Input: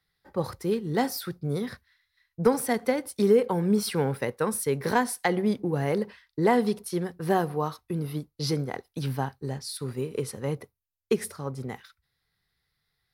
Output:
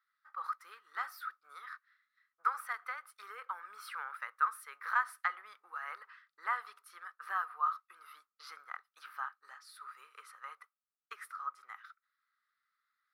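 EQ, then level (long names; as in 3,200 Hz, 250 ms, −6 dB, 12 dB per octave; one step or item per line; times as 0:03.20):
parametric band 1,600 Hz +8.5 dB 1.5 octaves
dynamic equaliser 6,600 Hz, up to −7 dB, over −47 dBFS, Q 0.71
four-pole ladder high-pass 1,200 Hz, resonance 85%
−4.0 dB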